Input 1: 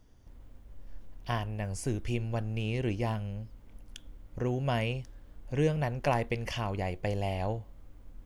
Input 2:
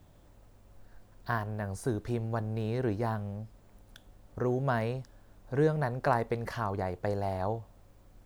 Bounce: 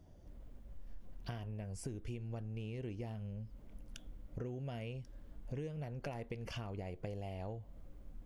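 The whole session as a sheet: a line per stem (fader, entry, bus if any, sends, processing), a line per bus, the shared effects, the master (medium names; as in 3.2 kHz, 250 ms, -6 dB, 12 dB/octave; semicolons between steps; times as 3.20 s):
-5.0 dB, 0.00 s, no send, none
-2.0 dB, 0.00 s, no send, spectral gate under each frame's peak -20 dB strong; compression, threshold -31 dBFS, peak gain reduction 10 dB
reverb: none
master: compression 6:1, threshold -40 dBFS, peak gain reduction 14.5 dB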